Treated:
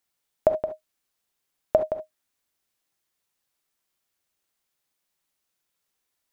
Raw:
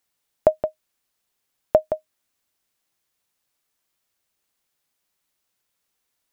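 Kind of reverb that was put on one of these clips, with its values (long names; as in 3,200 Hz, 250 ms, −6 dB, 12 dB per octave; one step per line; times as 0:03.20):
reverb whose tail is shaped and stops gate 90 ms rising, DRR 7 dB
level −3.5 dB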